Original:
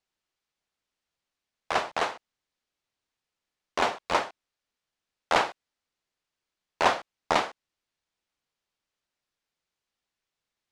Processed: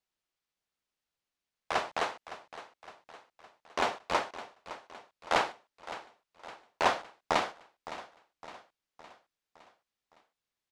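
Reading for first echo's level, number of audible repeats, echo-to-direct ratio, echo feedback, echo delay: -14.5 dB, 4, -13.0 dB, 52%, 562 ms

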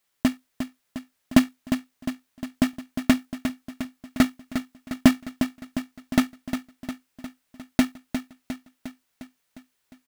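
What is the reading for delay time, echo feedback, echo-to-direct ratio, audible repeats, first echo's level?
355 ms, 59%, -7.0 dB, 6, -9.0 dB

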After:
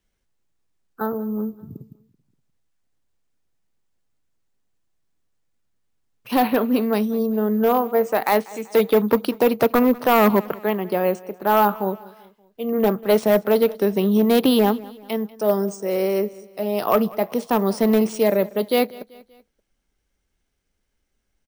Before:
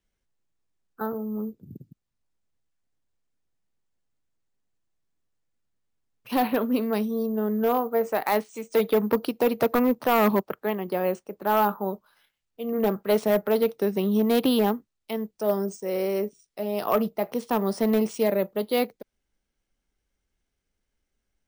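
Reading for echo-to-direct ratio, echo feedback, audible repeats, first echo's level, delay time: -20.0 dB, 47%, 3, -21.0 dB, 192 ms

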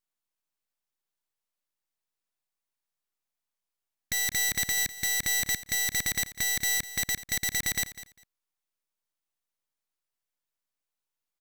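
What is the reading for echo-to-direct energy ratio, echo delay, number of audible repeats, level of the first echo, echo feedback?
-15.0 dB, 200 ms, 2, -15.0 dB, 18%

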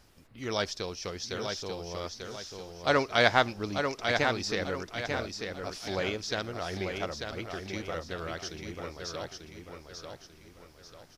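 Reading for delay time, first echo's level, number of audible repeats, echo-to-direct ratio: 892 ms, -5.5 dB, 4, -4.5 dB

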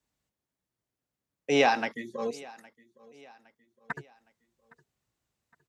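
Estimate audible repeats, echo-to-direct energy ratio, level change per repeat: 2, -22.0 dB, -7.0 dB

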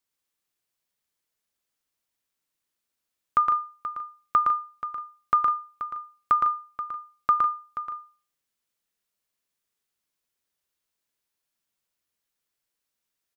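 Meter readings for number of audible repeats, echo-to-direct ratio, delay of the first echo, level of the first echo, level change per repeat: 2, -4.0 dB, 114 ms, -4.5 dB, no regular repeats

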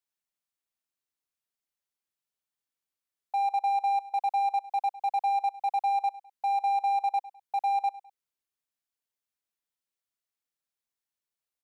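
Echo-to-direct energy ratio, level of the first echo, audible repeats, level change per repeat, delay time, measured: -18.0 dB, -19.0 dB, 2, -7.0 dB, 103 ms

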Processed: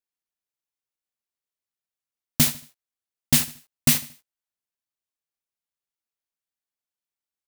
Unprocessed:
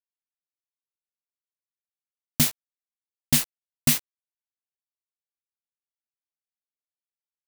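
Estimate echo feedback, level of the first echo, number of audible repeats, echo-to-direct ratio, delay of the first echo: 34%, -16.0 dB, 3, -15.5 dB, 76 ms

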